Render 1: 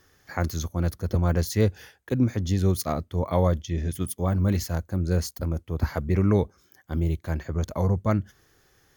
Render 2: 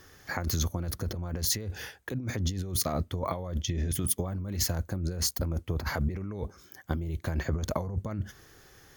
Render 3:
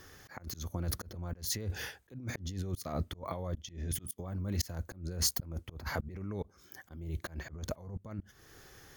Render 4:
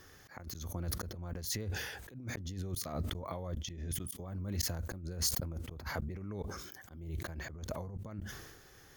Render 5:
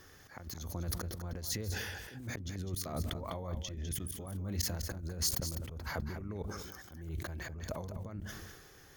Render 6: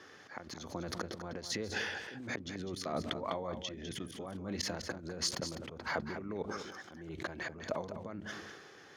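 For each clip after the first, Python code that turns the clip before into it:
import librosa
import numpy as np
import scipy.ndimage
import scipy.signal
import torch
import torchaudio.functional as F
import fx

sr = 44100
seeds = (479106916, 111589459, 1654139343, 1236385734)

y1 = fx.over_compress(x, sr, threshold_db=-31.0, ratio=-1.0)
y2 = fx.auto_swell(y1, sr, attack_ms=366.0)
y3 = fx.sustainer(y2, sr, db_per_s=44.0)
y3 = y3 * 10.0 ** (-3.0 / 20.0)
y4 = y3 + 10.0 ** (-9.5 / 20.0) * np.pad(y3, (int(202 * sr / 1000.0), 0))[:len(y3)]
y5 = fx.bandpass_edges(y4, sr, low_hz=230.0, high_hz=4400.0)
y5 = y5 * 10.0 ** (5.0 / 20.0)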